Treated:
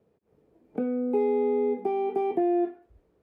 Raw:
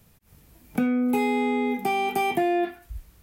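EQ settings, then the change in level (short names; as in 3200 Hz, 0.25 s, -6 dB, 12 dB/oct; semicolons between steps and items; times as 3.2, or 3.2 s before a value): band-pass 430 Hz, Q 2.9; +4.5 dB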